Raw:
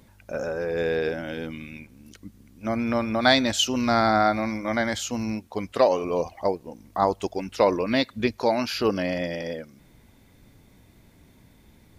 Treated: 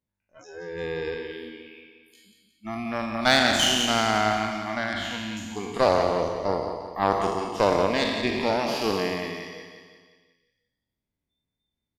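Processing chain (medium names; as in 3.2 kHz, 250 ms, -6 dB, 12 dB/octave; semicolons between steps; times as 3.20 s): spectral sustain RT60 1.94 s; Chebyshev shaper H 3 -17 dB, 4 -25 dB, 7 -37 dB, 8 -35 dB, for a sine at -1.5 dBFS; 4.93–5.37 s: resonant high shelf 5 kHz -10.5 dB, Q 1.5; spectral noise reduction 28 dB; feedback delay 177 ms, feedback 51%, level -9 dB; trim -1 dB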